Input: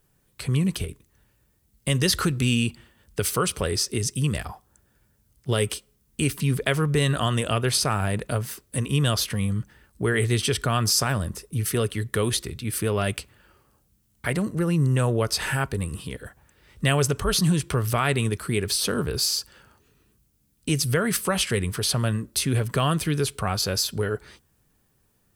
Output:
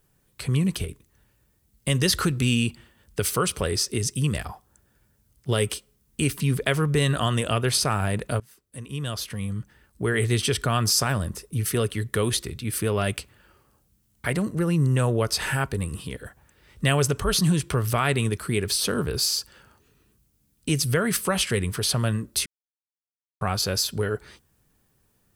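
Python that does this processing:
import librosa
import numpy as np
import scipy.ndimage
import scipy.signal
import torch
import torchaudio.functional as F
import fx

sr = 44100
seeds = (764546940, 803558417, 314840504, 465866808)

y = fx.edit(x, sr, fx.fade_in_from(start_s=8.4, length_s=1.94, floor_db=-23.0),
    fx.silence(start_s=22.46, length_s=0.95), tone=tone)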